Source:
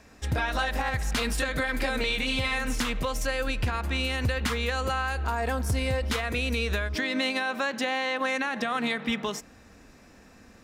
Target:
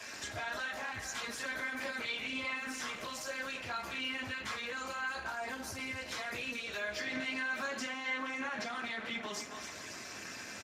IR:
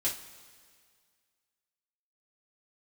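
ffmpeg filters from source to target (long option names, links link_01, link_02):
-filter_complex "[0:a]aecho=1:1:266|532:0.0794|0.0222,acompressor=threshold=-36dB:ratio=5,asettb=1/sr,asplit=3[link_01][link_02][link_03];[link_01]atrim=end=5.954[link_04];[link_02]atrim=start=5.95:end=8.14,asetpts=PTS-STARTPTS,afade=type=in:duration=0.004:curve=qsin,afade=type=out:start_time=2.186:duration=0.004:curve=qsin,equalizer=frequency=7800:width_type=o:width=2.8:gain=4[link_05];[link_03]atrim=start=8.136[link_06];[link_04][link_05]acrossfade=duration=0.004:curve1=hsin:curve2=qsin[link_07];[link_07][link_06]acrossfade=duration=0.004:curve1=qsin:curve2=hsin,alimiter=level_in=8.5dB:limit=-24dB:level=0:latency=1:release=16,volume=-8.5dB,acrossover=split=370|1500[link_08][link_09][link_10];[link_08]acompressor=threshold=-45dB:ratio=4[link_11];[link_09]acompressor=threshold=-48dB:ratio=4[link_12];[link_10]acompressor=threshold=-59dB:ratio=4[link_13];[link_11][link_12][link_13]amix=inputs=3:normalize=0,tiltshelf=frequency=770:gain=-8.5[link_14];[1:a]atrim=start_sample=2205[link_15];[link_14][link_15]afir=irnorm=-1:irlink=0,volume=4dB" -ar 32000 -c:a libspeex -b:a 15k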